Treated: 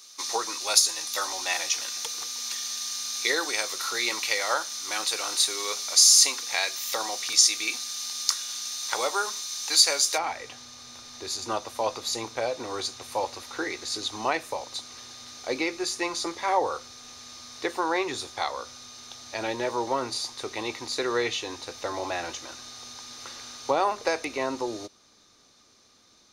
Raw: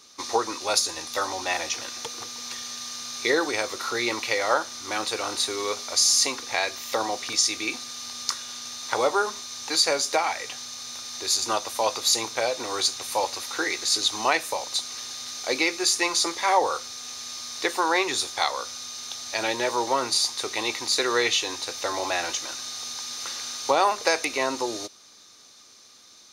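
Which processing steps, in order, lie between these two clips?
tilt +3 dB/oct, from 10.17 s -2 dB/oct; gain -4 dB

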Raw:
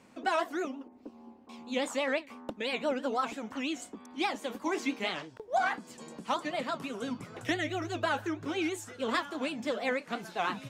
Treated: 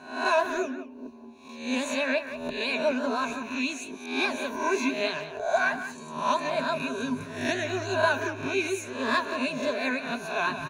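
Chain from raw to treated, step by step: spectral swells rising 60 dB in 0.57 s; ripple EQ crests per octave 1.5, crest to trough 14 dB; speakerphone echo 0.18 s, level -10 dB

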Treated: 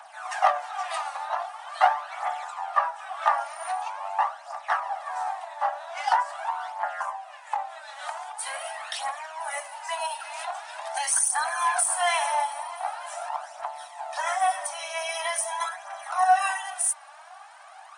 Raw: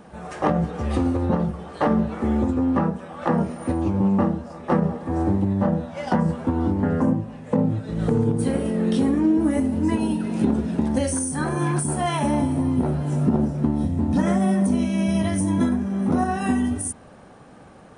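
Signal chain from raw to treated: steep high-pass 660 Hz 96 dB/oct; phaser 0.44 Hz, delay 3.7 ms, feedback 53%; gain +3.5 dB

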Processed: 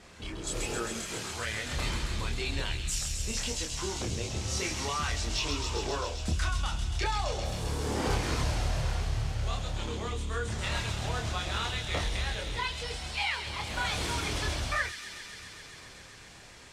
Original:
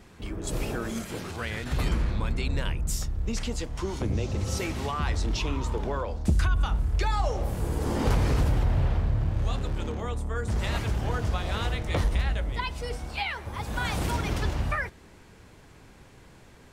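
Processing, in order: LPF 7500 Hz 12 dB/oct; tilt +2 dB/oct; in parallel at -2.5 dB: compressor 12:1, threshold -42 dBFS, peak gain reduction 19.5 dB; on the sum: hard clip -18.5 dBFS, distortion -32 dB; chorus voices 4, 0.15 Hz, delay 27 ms, depth 1.7 ms; on a send: thin delay 0.133 s, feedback 84%, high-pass 3200 Hz, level -4 dB

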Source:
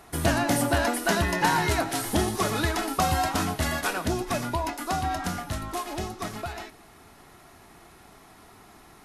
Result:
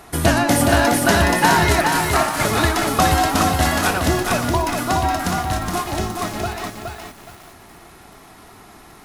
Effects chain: 1.81–2.45 ring modulator 1000 Hz; lo-fi delay 0.418 s, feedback 35%, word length 8-bit, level -4 dB; gain +7.5 dB

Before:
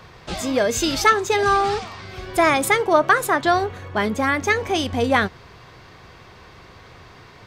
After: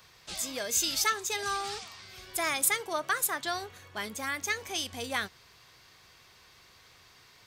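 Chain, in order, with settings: pre-emphasis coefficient 0.9

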